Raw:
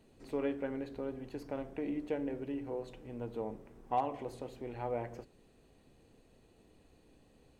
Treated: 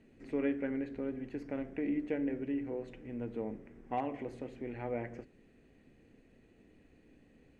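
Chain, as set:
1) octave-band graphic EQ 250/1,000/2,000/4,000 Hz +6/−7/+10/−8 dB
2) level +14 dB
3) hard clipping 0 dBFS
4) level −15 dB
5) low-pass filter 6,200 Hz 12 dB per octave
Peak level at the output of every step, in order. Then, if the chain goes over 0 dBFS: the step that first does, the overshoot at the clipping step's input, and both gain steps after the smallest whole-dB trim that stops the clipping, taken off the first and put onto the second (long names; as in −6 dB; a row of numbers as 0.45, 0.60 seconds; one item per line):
−19.5, −5.5, −5.5, −20.5, −20.5 dBFS
no step passes full scale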